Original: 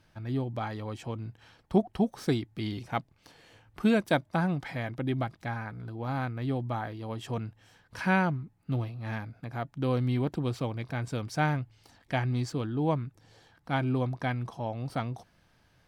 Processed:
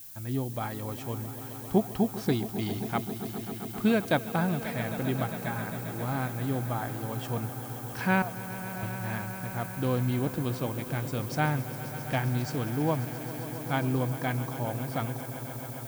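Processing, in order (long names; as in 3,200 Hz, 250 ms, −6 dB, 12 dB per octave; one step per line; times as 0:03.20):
0:08.22–0:08.83: formant filter a
background noise violet −46 dBFS
echo that builds up and dies away 134 ms, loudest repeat 5, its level −15.5 dB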